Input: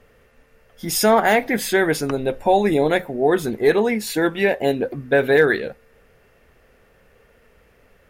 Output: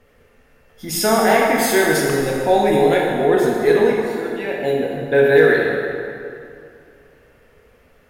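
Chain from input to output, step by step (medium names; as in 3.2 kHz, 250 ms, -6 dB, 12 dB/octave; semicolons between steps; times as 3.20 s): 1.58–2.94 s: treble shelf 4.4 kHz +6 dB; 3.92–5.04 s: fade in; plate-style reverb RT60 2.5 s, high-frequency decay 0.7×, DRR -2.5 dB; trim -2.5 dB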